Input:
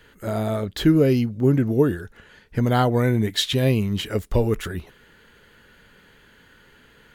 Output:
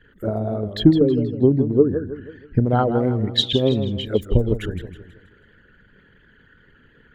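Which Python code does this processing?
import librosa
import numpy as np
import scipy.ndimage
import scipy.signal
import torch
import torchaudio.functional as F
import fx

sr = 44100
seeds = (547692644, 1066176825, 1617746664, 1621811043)

y = fx.envelope_sharpen(x, sr, power=2.0)
y = fx.transient(y, sr, attack_db=8, sustain_db=1)
y = fx.echo_warbled(y, sr, ms=161, feedback_pct=43, rate_hz=2.8, cents=139, wet_db=-10)
y = y * 10.0 ** (-1.5 / 20.0)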